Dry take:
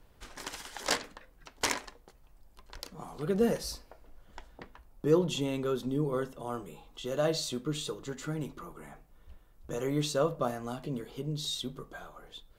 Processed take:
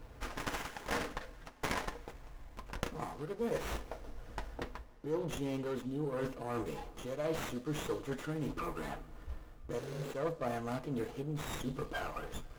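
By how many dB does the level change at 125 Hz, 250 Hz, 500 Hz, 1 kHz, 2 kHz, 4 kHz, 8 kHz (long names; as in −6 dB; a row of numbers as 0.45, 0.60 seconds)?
−4.5, −5.5, −5.5, −1.5, −1.5, −10.0, −9.5 decibels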